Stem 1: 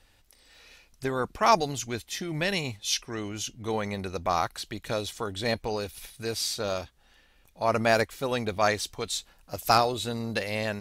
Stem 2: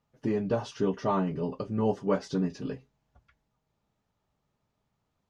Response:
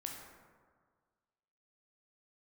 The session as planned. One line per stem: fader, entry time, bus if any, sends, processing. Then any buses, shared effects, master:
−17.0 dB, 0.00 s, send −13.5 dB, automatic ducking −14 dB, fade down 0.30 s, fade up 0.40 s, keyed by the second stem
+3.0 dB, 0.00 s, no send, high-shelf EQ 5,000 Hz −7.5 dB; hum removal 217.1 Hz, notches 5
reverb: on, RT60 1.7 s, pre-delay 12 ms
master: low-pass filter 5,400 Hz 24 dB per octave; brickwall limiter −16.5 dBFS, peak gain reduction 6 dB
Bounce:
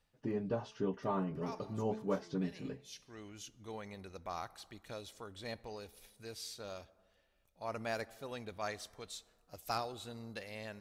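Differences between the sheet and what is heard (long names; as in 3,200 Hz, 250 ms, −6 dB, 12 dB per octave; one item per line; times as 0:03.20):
stem 2 +3.0 dB → −8.0 dB
master: missing low-pass filter 5,400 Hz 24 dB per octave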